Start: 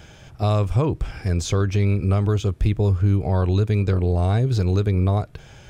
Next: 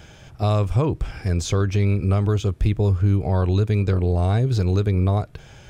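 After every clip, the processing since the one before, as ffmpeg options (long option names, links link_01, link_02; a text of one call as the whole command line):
ffmpeg -i in.wav -af anull out.wav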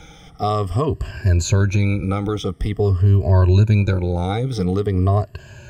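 ffmpeg -i in.wav -af "afftfilt=real='re*pow(10,17/40*sin(2*PI*(1.4*log(max(b,1)*sr/1024/100)/log(2)-(-0.47)*(pts-256)/sr)))':imag='im*pow(10,17/40*sin(2*PI*(1.4*log(max(b,1)*sr/1024/100)/log(2)-(-0.47)*(pts-256)/sr)))':win_size=1024:overlap=0.75" out.wav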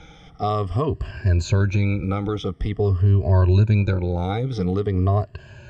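ffmpeg -i in.wav -af "lowpass=4600,volume=-2.5dB" out.wav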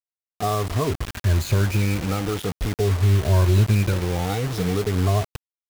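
ffmpeg -i in.wav -af "acrusher=bits=4:mix=0:aa=0.000001,volume=-1dB" out.wav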